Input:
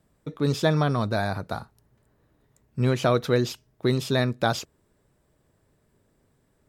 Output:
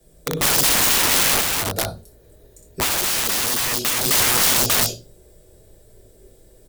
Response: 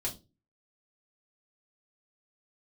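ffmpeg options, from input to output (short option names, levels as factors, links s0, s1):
-filter_complex "[0:a]equalizer=f=125:t=o:w=1:g=-7,equalizer=f=250:t=o:w=1:g=-7,equalizer=f=500:t=o:w=1:g=8,equalizer=f=1000:t=o:w=1:g=-11,equalizer=f=2000:t=o:w=1:g=-4,aecho=1:1:61.22|268.2:0.562|0.794[s0];[1:a]atrim=start_sample=2205[s1];[s0][s1]afir=irnorm=-1:irlink=0,acrossover=split=130|1300[s2][s3][s4];[s2]acompressor=threshold=0.02:ratio=4[s5];[s3]acompressor=threshold=0.112:ratio=4[s6];[s4]acompressor=threshold=0.0158:ratio=4[s7];[s5][s6][s7]amix=inputs=3:normalize=0,aeval=exprs='(mod(17.8*val(0)+1,2)-1)/17.8':c=same,highshelf=f=5800:g=10,asplit=3[s8][s9][s10];[s8]afade=t=out:st=1.4:d=0.02[s11];[s9]acompressor=threshold=0.0631:ratio=6,afade=t=in:st=1.4:d=0.02,afade=t=out:st=4.04:d=0.02[s12];[s10]afade=t=in:st=4.04:d=0.02[s13];[s11][s12][s13]amix=inputs=3:normalize=0,volume=2.66"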